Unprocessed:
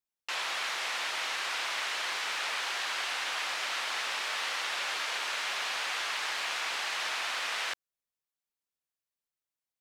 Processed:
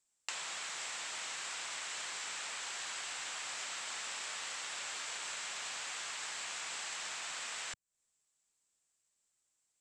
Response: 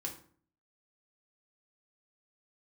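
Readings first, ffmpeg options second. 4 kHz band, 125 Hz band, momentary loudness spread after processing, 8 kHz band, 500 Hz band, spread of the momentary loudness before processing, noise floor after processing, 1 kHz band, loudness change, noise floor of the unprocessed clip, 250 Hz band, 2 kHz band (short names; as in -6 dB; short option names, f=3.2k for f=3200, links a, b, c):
-8.5 dB, n/a, 0 LU, 0.0 dB, -10.5 dB, 0 LU, -82 dBFS, -10.5 dB, -8.0 dB, under -85 dBFS, -7.0 dB, -10.0 dB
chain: -filter_complex "[0:a]acrossover=split=160[a][b];[b]acompressor=threshold=-48dB:ratio=10[c];[a][c]amix=inputs=2:normalize=0,lowpass=f=7.7k:t=q:w=7,volume=6dB"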